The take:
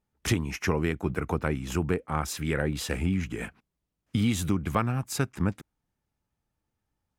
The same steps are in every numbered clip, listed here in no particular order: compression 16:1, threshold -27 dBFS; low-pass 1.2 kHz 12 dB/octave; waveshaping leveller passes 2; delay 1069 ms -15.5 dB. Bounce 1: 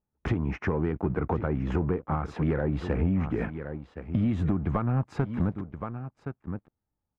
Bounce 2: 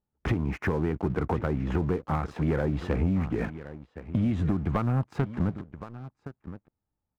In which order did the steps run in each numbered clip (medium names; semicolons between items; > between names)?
delay > compression > waveshaping leveller > low-pass; low-pass > compression > delay > waveshaping leveller